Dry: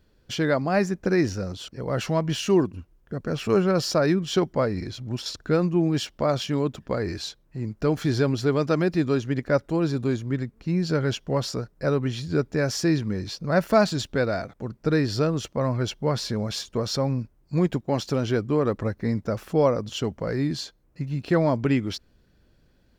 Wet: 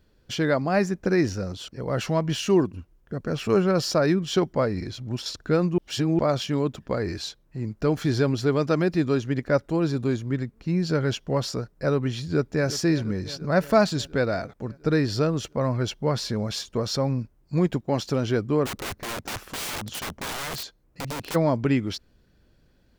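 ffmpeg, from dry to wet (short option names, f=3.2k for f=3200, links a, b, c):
-filter_complex "[0:a]asplit=2[a][b];[b]afade=t=in:st=12.22:d=0.01,afade=t=out:st=12.67:d=0.01,aecho=0:1:350|700|1050|1400|1750|2100|2450|2800|3150:0.188365|0.131855|0.0922988|0.0646092|0.0452264|0.0316585|0.0221609|0.0155127|0.0108589[c];[a][c]amix=inputs=2:normalize=0,asplit=3[d][e][f];[d]afade=t=out:st=18.65:d=0.02[g];[e]aeval=exprs='(mod(22.4*val(0)+1,2)-1)/22.4':c=same,afade=t=in:st=18.65:d=0.02,afade=t=out:st=21.34:d=0.02[h];[f]afade=t=in:st=21.34:d=0.02[i];[g][h][i]amix=inputs=3:normalize=0,asplit=3[j][k][l];[j]atrim=end=5.782[m];[k]atrim=start=5.778:end=6.192,asetpts=PTS-STARTPTS,areverse[n];[l]atrim=start=6.188[o];[m][n]acrossfade=d=0.004:c1=hsin:c2=hsin[p];[p][o]acrossfade=d=0.004:c1=hsin:c2=hsin"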